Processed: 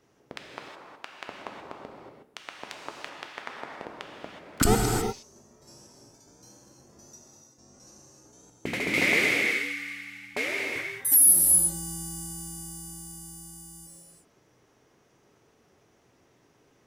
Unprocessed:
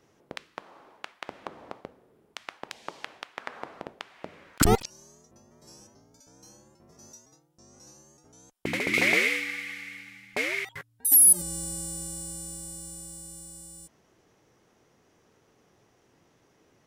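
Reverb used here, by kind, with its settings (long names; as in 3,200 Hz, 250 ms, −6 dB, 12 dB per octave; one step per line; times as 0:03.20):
reverb whose tail is shaped and stops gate 390 ms flat, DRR 0 dB
level −2 dB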